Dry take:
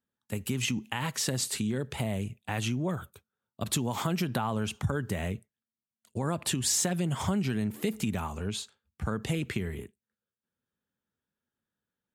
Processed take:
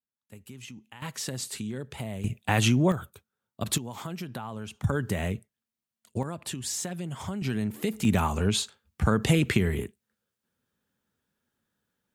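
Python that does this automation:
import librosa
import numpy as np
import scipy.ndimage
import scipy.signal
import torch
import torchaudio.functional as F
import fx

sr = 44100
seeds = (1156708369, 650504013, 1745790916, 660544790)

y = fx.gain(x, sr, db=fx.steps((0.0, -14.0), (1.02, -4.0), (2.24, 8.5), (2.92, 2.0), (3.78, -7.0), (4.84, 3.0), (6.23, -5.5), (7.42, 1.0), (8.05, 8.5)))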